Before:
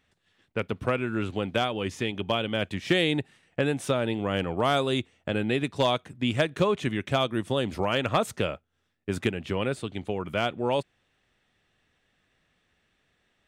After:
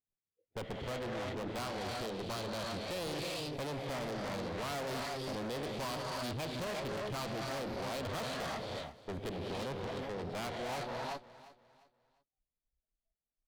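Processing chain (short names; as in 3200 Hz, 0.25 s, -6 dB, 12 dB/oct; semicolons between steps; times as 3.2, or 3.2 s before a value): Wiener smoothing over 41 samples; non-linear reverb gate 0.39 s rising, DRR 5 dB; tube stage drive 38 dB, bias 0.45; formant shift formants +5 st; spectral noise reduction 28 dB; on a send: feedback echo 0.351 s, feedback 33%, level -17 dB; on the sum: gain +1 dB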